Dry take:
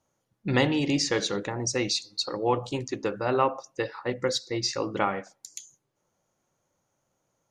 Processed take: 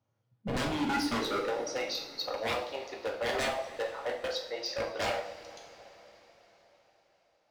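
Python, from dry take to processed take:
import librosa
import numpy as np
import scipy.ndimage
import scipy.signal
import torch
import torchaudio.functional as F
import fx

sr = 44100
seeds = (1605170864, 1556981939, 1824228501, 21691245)

y = fx.filter_sweep_highpass(x, sr, from_hz=110.0, to_hz=650.0, start_s=0.21, end_s=1.74, q=5.9)
y = scipy.signal.savgol_filter(y, 15, 4, mode='constant')
y = 10.0 ** (-20.0 / 20.0) * (np.abs((y / 10.0 ** (-20.0 / 20.0) + 3.0) % 4.0 - 2.0) - 1.0)
y = fx.rev_double_slope(y, sr, seeds[0], early_s=0.47, late_s=4.8, knee_db=-19, drr_db=0.5)
y = y * 10.0 ** (-8.0 / 20.0)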